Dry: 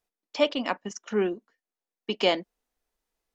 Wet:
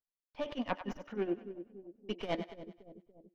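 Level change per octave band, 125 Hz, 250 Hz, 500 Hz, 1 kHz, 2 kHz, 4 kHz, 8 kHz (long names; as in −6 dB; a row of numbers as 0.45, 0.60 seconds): −4.5 dB, −7.0 dB, −11.5 dB, −9.0 dB, −12.5 dB, −17.0 dB, can't be measured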